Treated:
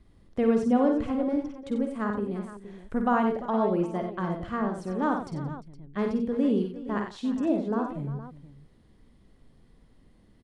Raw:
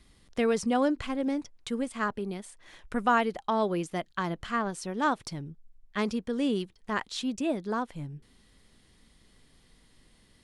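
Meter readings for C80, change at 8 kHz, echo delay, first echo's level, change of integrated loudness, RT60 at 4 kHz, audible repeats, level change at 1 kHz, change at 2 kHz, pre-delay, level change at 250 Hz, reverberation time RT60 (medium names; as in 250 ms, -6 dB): no reverb, under -10 dB, 49 ms, -7.5 dB, +2.5 dB, no reverb, 5, -0.5 dB, -4.5 dB, no reverb, +4.5 dB, no reverb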